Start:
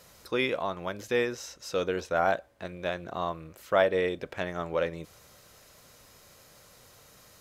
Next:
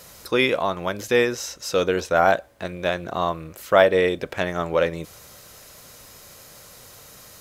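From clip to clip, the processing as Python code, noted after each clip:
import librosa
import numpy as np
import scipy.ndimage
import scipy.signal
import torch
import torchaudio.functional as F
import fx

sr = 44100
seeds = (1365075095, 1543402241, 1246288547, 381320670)

y = fx.high_shelf(x, sr, hz=6800.0, db=5.5)
y = F.gain(torch.from_numpy(y), 8.0).numpy()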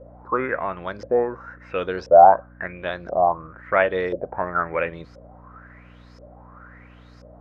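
y = fx.high_shelf_res(x, sr, hz=2400.0, db=-12.5, q=1.5)
y = fx.filter_lfo_lowpass(y, sr, shape='saw_up', hz=0.97, low_hz=520.0, high_hz=5300.0, q=7.9)
y = fx.dmg_buzz(y, sr, base_hz=60.0, harmonics=5, level_db=-42.0, tilt_db=-4, odd_only=False)
y = F.gain(torch.from_numpy(y), -6.0).numpy()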